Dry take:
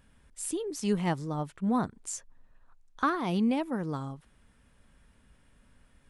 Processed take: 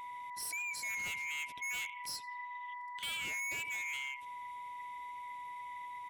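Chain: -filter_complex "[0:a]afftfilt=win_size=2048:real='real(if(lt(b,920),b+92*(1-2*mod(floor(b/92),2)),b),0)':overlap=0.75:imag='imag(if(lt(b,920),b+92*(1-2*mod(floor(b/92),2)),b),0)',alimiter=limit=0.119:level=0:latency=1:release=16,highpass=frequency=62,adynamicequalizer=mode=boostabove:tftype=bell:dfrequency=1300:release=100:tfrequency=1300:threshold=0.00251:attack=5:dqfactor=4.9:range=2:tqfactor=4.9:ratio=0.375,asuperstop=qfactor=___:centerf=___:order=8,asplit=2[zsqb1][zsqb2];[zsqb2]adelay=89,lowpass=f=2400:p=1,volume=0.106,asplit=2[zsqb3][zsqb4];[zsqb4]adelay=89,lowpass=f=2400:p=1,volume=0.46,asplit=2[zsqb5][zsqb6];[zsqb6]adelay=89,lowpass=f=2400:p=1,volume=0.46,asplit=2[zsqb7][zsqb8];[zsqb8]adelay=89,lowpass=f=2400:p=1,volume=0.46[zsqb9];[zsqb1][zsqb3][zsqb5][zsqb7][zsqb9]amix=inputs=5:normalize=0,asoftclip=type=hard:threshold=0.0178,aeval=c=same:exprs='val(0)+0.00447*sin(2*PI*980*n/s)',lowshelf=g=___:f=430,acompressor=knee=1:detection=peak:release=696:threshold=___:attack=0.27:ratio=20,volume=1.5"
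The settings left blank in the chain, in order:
1.5, 1100, 4, 0.0112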